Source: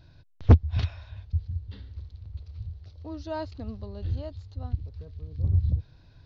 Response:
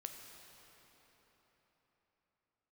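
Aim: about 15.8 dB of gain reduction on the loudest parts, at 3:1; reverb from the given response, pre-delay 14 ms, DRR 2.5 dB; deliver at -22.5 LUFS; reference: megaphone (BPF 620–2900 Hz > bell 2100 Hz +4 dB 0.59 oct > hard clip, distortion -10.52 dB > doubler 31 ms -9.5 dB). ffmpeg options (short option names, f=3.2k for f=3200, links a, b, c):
-filter_complex "[0:a]acompressor=threshold=-33dB:ratio=3,asplit=2[a][b];[1:a]atrim=start_sample=2205,adelay=14[c];[b][c]afir=irnorm=-1:irlink=0,volume=1dB[d];[a][d]amix=inputs=2:normalize=0,highpass=620,lowpass=2.9k,equalizer=f=2.1k:t=o:w=0.59:g=4,asoftclip=type=hard:threshold=-36.5dB,asplit=2[e][f];[f]adelay=31,volume=-9.5dB[g];[e][g]amix=inputs=2:normalize=0,volume=26dB"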